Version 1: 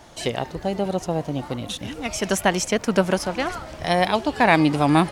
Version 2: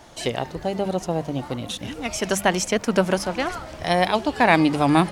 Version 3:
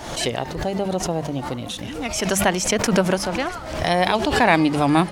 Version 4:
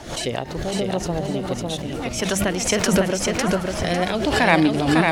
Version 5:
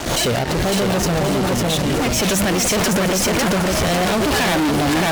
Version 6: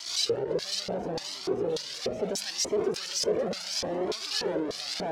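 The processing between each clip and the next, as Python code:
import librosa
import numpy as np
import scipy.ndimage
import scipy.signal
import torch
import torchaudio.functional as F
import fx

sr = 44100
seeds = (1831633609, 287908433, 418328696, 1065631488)

y1 = fx.hum_notches(x, sr, base_hz=50, count=4)
y2 = fx.pre_swell(y1, sr, db_per_s=58.0)
y3 = fx.rotary_switch(y2, sr, hz=5.0, then_hz=1.2, switch_at_s=1.71)
y3 = fx.echo_feedback(y3, sr, ms=552, feedback_pct=27, wet_db=-3.5)
y3 = F.gain(torch.from_numpy(y3), 1.0).numpy()
y4 = fx.fuzz(y3, sr, gain_db=37.0, gate_db=-38.0)
y4 = F.gain(torch.from_numpy(y4), -3.0).numpy()
y5 = fx.filter_lfo_bandpass(y4, sr, shape='square', hz=1.7, low_hz=420.0, high_hz=4800.0, q=3.5)
y5 = fx.comb_cascade(y5, sr, direction='rising', hz=0.74)
y5 = F.gain(torch.from_numpy(y5), 3.5).numpy()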